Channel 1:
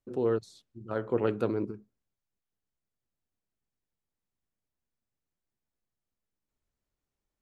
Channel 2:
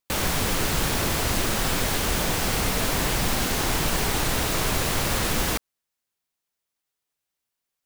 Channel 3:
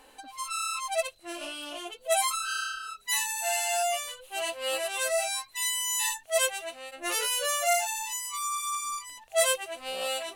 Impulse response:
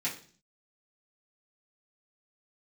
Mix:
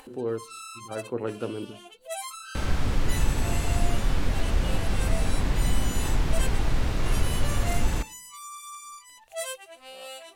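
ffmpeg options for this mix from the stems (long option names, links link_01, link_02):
-filter_complex "[0:a]volume=-3dB,asplit=2[link_01][link_02];[link_02]volume=-18.5dB[link_03];[1:a]aemphasis=mode=reproduction:type=bsi,adelay=2450,volume=-8.5dB,asplit=2[link_04][link_05];[link_05]volume=-18.5dB[link_06];[2:a]volume=-9.5dB[link_07];[3:a]atrim=start_sample=2205[link_08];[link_03][link_06]amix=inputs=2:normalize=0[link_09];[link_09][link_08]afir=irnorm=-1:irlink=0[link_10];[link_01][link_04][link_07][link_10]amix=inputs=4:normalize=0,acompressor=mode=upward:threshold=-41dB:ratio=2.5"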